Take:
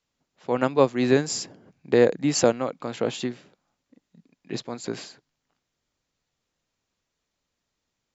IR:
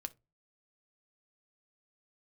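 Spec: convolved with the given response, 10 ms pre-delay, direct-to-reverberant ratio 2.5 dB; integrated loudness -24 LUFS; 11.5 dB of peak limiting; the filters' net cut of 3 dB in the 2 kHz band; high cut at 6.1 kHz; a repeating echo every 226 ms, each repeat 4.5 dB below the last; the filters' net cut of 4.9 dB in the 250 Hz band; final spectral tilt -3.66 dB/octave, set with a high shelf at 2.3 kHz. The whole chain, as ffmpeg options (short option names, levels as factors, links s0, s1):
-filter_complex "[0:a]lowpass=6100,equalizer=f=250:t=o:g=-6,equalizer=f=2000:t=o:g=-6,highshelf=f=2300:g=4.5,alimiter=limit=0.133:level=0:latency=1,aecho=1:1:226|452|678|904|1130|1356|1582|1808|2034:0.596|0.357|0.214|0.129|0.0772|0.0463|0.0278|0.0167|0.01,asplit=2[s0][s1];[1:a]atrim=start_sample=2205,adelay=10[s2];[s1][s2]afir=irnorm=-1:irlink=0,volume=1.06[s3];[s0][s3]amix=inputs=2:normalize=0,volume=1.5"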